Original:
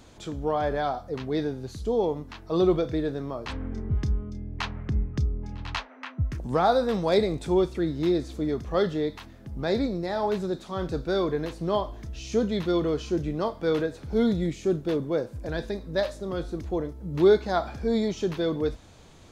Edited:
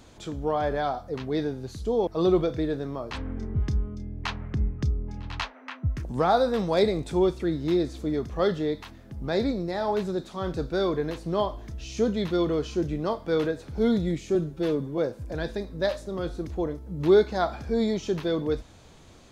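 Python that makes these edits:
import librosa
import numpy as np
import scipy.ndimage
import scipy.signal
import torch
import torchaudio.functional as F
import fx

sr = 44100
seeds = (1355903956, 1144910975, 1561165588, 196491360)

y = fx.edit(x, sr, fx.cut(start_s=2.07, length_s=0.35),
    fx.stretch_span(start_s=14.7, length_s=0.42, factor=1.5), tone=tone)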